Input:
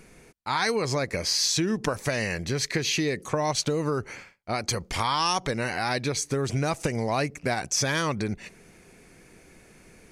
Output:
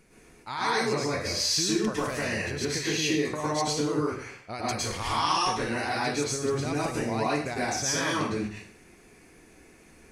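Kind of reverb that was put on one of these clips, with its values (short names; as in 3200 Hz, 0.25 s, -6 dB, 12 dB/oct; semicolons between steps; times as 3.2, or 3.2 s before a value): plate-style reverb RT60 0.58 s, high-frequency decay 0.9×, pre-delay 95 ms, DRR -7 dB; gain -8.5 dB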